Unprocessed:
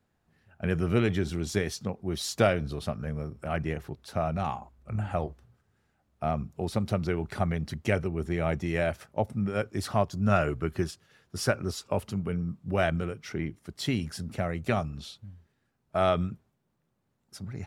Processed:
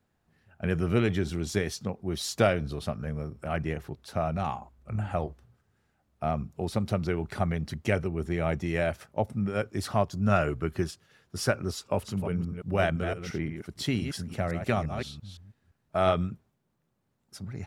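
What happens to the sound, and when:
0:11.76–0:16.13: delay that plays each chunk backwards 172 ms, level −7.5 dB

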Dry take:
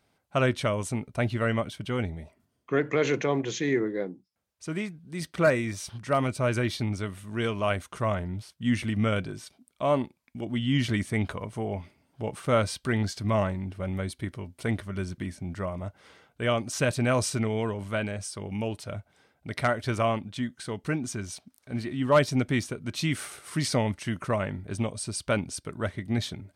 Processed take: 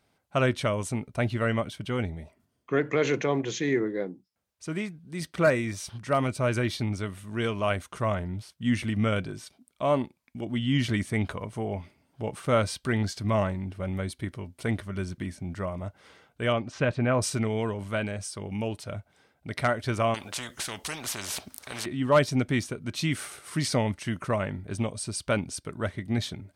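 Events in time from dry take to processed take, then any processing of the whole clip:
0:16.52–0:17.21: low-pass filter 3,600 Hz → 2,000 Hz
0:20.14–0:21.86: every bin compressed towards the loudest bin 4 to 1

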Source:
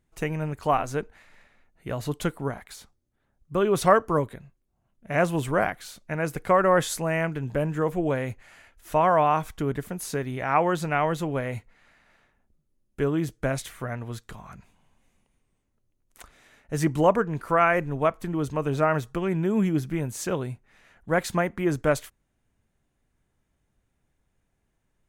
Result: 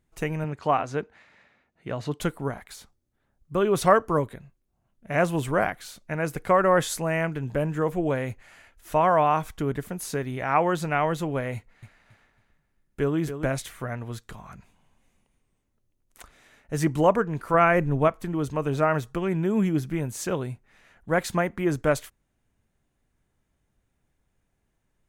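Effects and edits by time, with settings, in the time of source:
0:00.44–0:02.20: band-pass filter 100–5,500 Hz
0:11.55–0:13.46: repeating echo 276 ms, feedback 27%, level −9.5 dB
0:17.54–0:18.08: low-shelf EQ 370 Hz +7 dB

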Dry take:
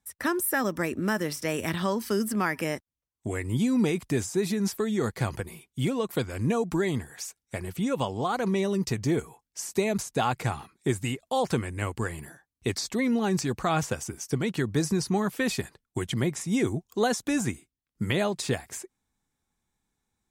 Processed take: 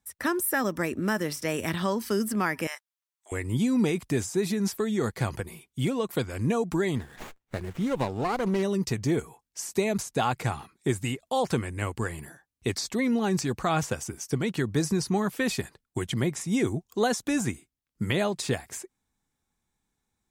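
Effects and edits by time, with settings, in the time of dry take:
0:02.67–0:03.32: high-pass filter 930 Hz 24 dB per octave
0:06.96–0:08.63: windowed peak hold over 9 samples

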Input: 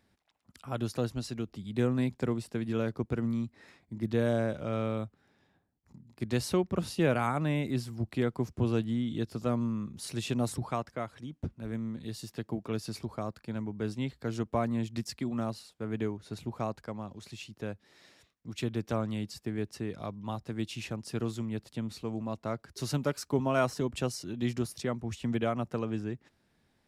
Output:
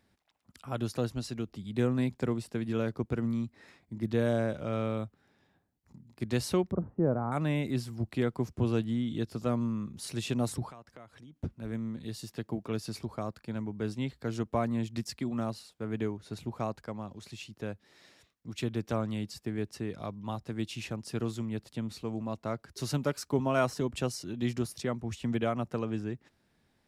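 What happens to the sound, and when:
0:06.71–0:07.32: Gaussian smoothing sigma 8.2 samples
0:10.70–0:11.36: downward compressor 3 to 1, threshold −51 dBFS

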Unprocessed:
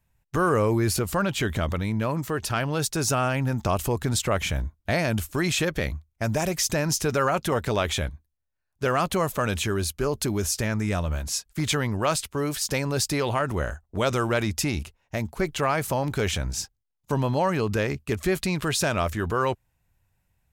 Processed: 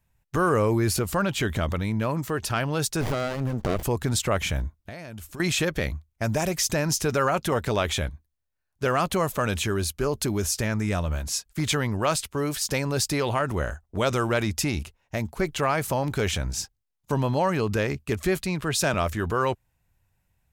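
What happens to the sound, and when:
0:03.01–0:03.83: windowed peak hold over 33 samples
0:04.80–0:05.40: downward compressor, threshold −36 dBFS
0:18.42–0:18.94: multiband upward and downward expander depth 70%

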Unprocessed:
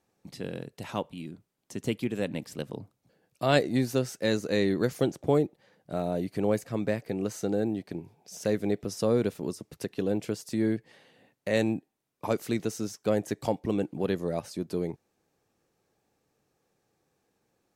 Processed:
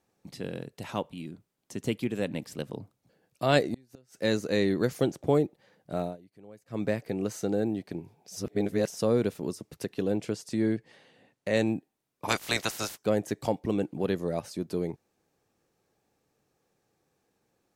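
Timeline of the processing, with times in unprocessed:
0:03.61–0:04.17: gate with flip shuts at −20 dBFS, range −32 dB
0:06.02–0:06.81: duck −23.5 dB, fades 0.15 s
0:08.36–0:08.95: reverse
0:10.16–0:11.67: low-pass filter 10,000 Hz
0:12.28–0:12.97: ceiling on every frequency bin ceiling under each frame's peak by 28 dB

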